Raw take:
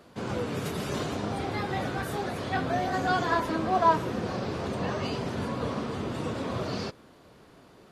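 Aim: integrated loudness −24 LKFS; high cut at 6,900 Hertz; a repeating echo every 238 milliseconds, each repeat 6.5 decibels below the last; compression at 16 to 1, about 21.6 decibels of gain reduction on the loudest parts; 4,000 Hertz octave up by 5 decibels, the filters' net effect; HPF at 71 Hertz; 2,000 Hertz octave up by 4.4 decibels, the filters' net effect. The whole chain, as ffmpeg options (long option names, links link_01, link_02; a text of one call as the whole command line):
ffmpeg -i in.wav -af "highpass=71,lowpass=6900,equalizer=frequency=2000:width_type=o:gain=5,equalizer=frequency=4000:width_type=o:gain=5,acompressor=threshold=-37dB:ratio=16,aecho=1:1:238|476|714|952|1190|1428:0.473|0.222|0.105|0.0491|0.0231|0.0109,volume=16dB" out.wav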